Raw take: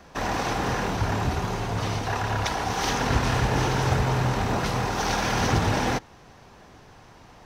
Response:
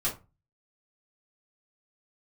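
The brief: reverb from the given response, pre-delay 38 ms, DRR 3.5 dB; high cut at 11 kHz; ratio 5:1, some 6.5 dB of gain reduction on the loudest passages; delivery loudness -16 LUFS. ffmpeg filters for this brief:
-filter_complex "[0:a]lowpass=11000,acompressor=threshold=0.0562:ratio=5,asplit=2[s0][s1];[1:a]atrim=start_sample=2205,adelay=38[s2];[s1][s2]afir=irnorm=-1:irlink=0,volume=0.316[s3];[s0][s3]amix=inputs=2:normalize=0,volume=3.55"

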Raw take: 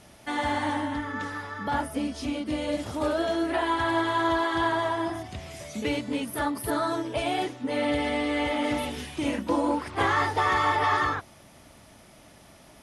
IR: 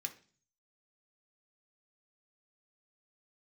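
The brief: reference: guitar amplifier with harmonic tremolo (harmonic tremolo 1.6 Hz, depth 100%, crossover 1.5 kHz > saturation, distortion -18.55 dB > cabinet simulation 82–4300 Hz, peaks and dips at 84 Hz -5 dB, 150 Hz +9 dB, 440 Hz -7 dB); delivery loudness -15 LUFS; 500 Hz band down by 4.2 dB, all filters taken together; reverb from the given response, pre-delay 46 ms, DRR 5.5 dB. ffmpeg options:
-filter_complex "[0:a]equalizer=f=500:t=o:g=-4,asplit=2[s0][s1];[1:a]atrim=start_sample=2205,adelay=46[s2];[s1][s2]afir=irnorm=-1:irlink=0,volume=0.668[s3];[s0][s3]amix=inputs=2:normalize=0,acrossover=split=1500[s4][s5];[s4]aeval=exprs='val(0)*(1-1/2+1/2*cos(2*PI*1.6*n/s))':c=same[s6];[s5]aeval=exprs='val(0)*(1-1/2-1/2*cos(2*PI*1.6*n/s))':c=same[s7];[s6][s7]amix=inputs=2:normalize=0,asoftclip=threshold=0.075,highpass=82,equalizer=f=84:t=q:w=4:g=-5,equalizer=f=150:t=q:w=4:g=9,equalizer=f=440:t=q:w=4:g=-7,lowpass=f=4300:w=0.5412,lowpass=f=4300:w=1.3066,volume=8.91"

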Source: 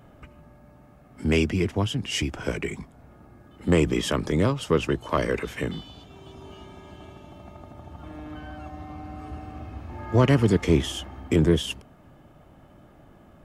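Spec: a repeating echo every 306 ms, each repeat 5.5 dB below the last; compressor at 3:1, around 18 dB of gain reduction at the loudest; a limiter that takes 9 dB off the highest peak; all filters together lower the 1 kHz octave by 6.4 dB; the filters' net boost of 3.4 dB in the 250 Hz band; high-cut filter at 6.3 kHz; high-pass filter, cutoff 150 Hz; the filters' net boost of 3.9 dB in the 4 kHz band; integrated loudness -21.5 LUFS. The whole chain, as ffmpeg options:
-af "highpass=150,lowpass=6300,equalizer=f=250:t=o:g=6,equalizer=f=1000:t=o:g=-9,equalizer=f=4000:t=o:g=7,acompressor=threshold=0.0112:ratio=3,alimiter=level_in=2.37:limit=0.0631:level=0:latency=1,volume=0.422,aecho=1:1:306|612|918|1224|1530|1836|2142:0.531|0.281|0.149|0.079|0.0419|0.0222|0.0118,volume=10"

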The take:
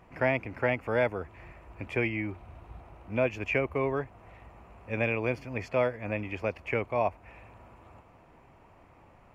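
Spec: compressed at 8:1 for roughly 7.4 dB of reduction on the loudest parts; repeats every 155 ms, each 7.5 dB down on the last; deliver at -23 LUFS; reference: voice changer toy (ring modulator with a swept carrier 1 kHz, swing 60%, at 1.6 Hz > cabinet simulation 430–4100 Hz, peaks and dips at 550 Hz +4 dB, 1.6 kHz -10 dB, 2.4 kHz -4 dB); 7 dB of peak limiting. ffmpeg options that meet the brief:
-af "acompressor=threshold=0.0355:ratio=8,alimiter=level_in=1.19:limit=0.0631:level=0:latency=1,volume=0.841,aecho=1:1:155|310|465|620|775:0.422|0.177|0.0744|0.0312|0.0131,aeval=exprs='val(0)*sin(2*PI*1000*n/s+1000*0.6/1.6*sin(2*PI*1.6*n/s))':c=same,highpass=430,equalizer=f=550:t=q:w=4:g=4,equalizer=f=1600:t=q:w=4:g=-10,equalizer=f=2400:t=q:w=4:g=-4,lowpass=f=4100:w=0.5412,lowpass=f=4100:w=1.3066,volume=10"

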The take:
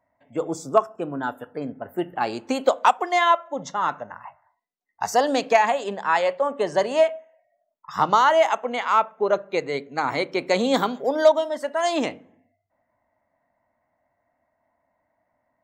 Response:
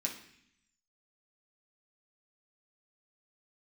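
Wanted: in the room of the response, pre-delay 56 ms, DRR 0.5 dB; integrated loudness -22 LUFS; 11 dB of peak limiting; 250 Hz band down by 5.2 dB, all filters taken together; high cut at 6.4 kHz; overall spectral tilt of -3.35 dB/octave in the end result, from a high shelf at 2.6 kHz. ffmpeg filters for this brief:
-filter_complex "[0:a]lowpass=6400,equalizer=f=250:t=o:g=-6.5,highshelf=f=2600:g=-7,alimiter=limit=0.141:level=0:latency=1,asplit=2[s0][s1];[1:a]atrim=start_sample=2205,adelay=56[s2];[s1][s2]afir=irnorm=-1:irlink=0,volume=0.794[s3];[s0][s3]amix=inputs=2:normalize=0,volume=1.58"

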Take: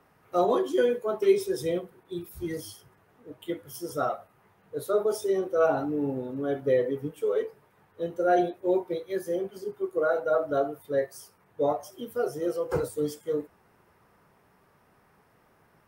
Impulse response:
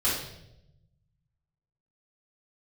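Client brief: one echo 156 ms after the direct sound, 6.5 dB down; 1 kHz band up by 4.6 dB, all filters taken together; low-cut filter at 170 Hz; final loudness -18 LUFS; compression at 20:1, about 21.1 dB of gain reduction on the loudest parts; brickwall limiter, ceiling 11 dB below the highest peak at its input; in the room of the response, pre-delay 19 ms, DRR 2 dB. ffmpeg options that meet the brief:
-filter_complex "[0:a]highpass=170,equalizer=f=1000:t=o:g=7.5,acompressor=threshold=0.0158:ratio=20,alimiter=level_in=3.55:limit=0.0631:level=0:latency=1,volume=0.282,aecho=1:1:156:0.473,asplit=2[s0][s1];[1:a]atrim=start_sample=2205,adelay=19[s2];[s1][s2]afir=irnorm=-1:irlink=0,volume=0.224[s3];[s0][s3]amix=inputs=2:normalize=0,volume=15"

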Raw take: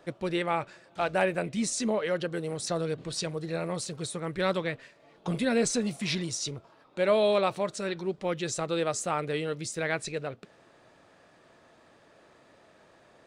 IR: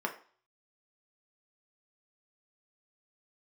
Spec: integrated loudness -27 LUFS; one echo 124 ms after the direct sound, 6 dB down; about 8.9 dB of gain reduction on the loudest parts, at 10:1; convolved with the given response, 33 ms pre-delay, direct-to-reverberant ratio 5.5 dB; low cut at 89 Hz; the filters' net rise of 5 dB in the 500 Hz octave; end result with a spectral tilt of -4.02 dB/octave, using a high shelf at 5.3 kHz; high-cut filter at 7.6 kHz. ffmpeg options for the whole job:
-filter_complex "[0:a]highpass=89,lowpass=7600,equalizer=f=500:t=o:g=6,highshelf=f=5300:g=5.5,acompressor=threshold=0.0562:ratio=10,aecho=1:1:124:0.501,asplit=2[s0][s1];[1:a]atrim=start_sample=2205,adelay=33[s2];[s1][s2]afir=irnorm=-1:irlink=0,volume=0.266[s3];[s0][s3]amix=inputs=2:normalize=0,volume=1.33"

